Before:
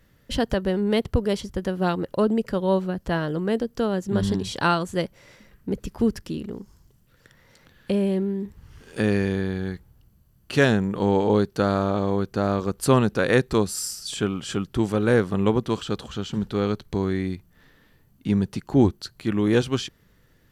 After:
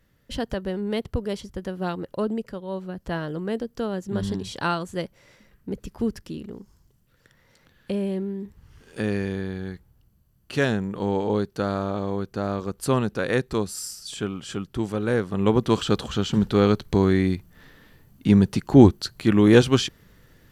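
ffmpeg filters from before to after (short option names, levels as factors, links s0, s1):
-af "volume=4.47,afade=t=out:st=2.34:d=0.31:silence=0.421697,afade=t=in:st=2.65:d=0.43:silence=0.375837,afade=t=in:st=15.3:d=0.51:silence=0.334965"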